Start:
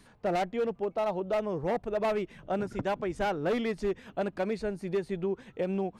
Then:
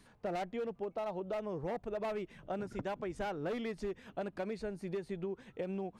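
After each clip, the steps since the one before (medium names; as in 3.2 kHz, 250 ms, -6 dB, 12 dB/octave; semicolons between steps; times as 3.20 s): compression, threshold -30 dBFS, peak gain reduction 5 dB; trim -4.5 dB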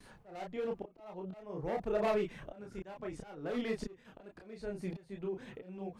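slow attack 636 ms; gate with hold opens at -57 dBFS; chorus voices 4, 0.66 Hz, delay 30 ms, depth 4.1 ms; trim +9 dB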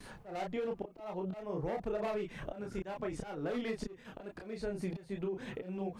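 compression 6:1, threshold -40 dBFS, peak gain reduction 12.5 dB; trim +6.5 dB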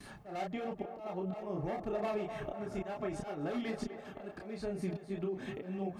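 comb of notches 490 Hz; band-passed feedback delay 252 ms, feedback 71%, band-pass 800 Hz, level -7.5 dB; trim +1 dB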